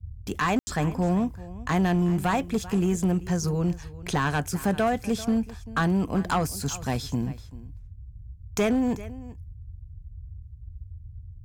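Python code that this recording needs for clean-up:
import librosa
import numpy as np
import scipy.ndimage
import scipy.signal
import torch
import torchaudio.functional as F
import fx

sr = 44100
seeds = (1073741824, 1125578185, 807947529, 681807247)

y = fx.fix_declip(x, sr, threshold_db=-18.0)
y = fx.fix_ambience(y, sr, seeds[0], print_start_s=7.93, print_end_s=8.43, start_s=0.59, end_s=0.67)
y = fx.noise_reduce(y, sr, print_start_s=7.93, print_end_s=8.43, reduce_db=29.0)
y = fx.fix_echo_inverse(y, sr, delay_ms=390, level_db=-18.0)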